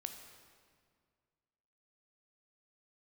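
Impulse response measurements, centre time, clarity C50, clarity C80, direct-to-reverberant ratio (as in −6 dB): 34 ms, 6.5 dB, 8.0 dB, 5.5 dB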